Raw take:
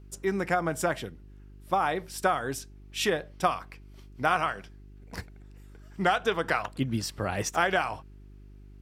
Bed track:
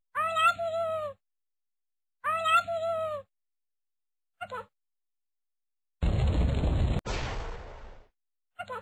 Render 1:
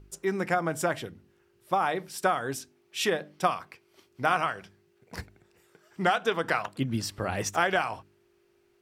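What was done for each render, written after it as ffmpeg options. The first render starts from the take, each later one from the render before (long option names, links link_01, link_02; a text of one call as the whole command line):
ffmpeg -i in.wav -af "bandreject=frequency=50:width_type=h:width=4,bandreject=frequency=100:width_type=h:width=4,bandreject=frequency=150:width_type=h:width=4,bandreject=frequency=200:width_type=h:width=4,bandreject=frequency=250:width_type=h:width=4,bandreject=frequency=300:width_type=h:width=4" out.wav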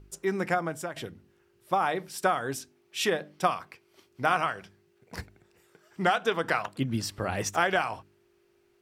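ffmpeg -i in.wav -filter_complex "[0:a]asplit=2[link_01][link_02];[link_01]atrim=end=0.96,asetpts=PTS-STARTPTS,afade=type=out:start_time=0.51:duration=0.45:silence=0.223872[link_03];[link_02]atrim=start=0.96,asetpts=PTS-STARTPTS,afade=type=in:duration=0.004:curve=hsin:silence=0.223872[link_04];[link_03][link_04]concat=n=2:v=0:a=1" out.wav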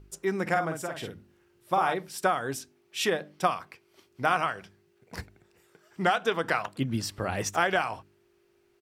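ffmpeg -i in.wav -filter_complex "[0:a]asplit=3[link_01][link_02][link_03];[link_01]afade=type=out:start_time=0.46:duration=0.02[link_04];[link_02]asplit=2[link_05][link_06];[link_06]adelay=49,volume=-5dB[link_07];[link_05][link_07]amix=inputs=2:normalize=0,afade=type=in:start_time=0.46:duration=0.02,afade=type=out:start_time=1.93:duration=0.02[link_08];[link_03]afade=type=in:start_time=1.93:duration=0.02[link_09];[link_04][link_08][link_09]amix=inputs=3:normalize=0" out.wav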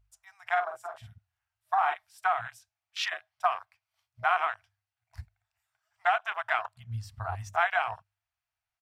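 ffmpeg -i in.wav -af "afftfilt=real='re*(1-between(b*sr/4096,120,630))':imag='im*(1-between(b*sr/4096,120,630))':win_size=4096:overlap=0.75,afwtdn=0.0224" out.wav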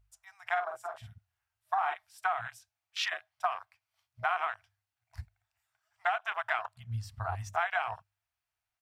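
ffmpeg -i in.wav -af "acompressor=threshold=-28dB:ratio=2.5" out.wav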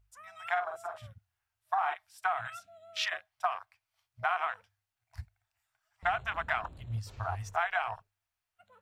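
ffmpeg -i in.wav -i bed.wav -filter_complex "[1:a]volume=-23.5dB[link_01];[0:a][link_01]amix=inputs=2:normalize=0" out.wav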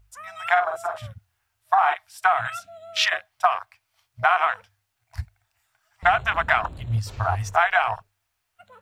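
ffmpeg -i in.wav -af "volume=11.5dB" out.wav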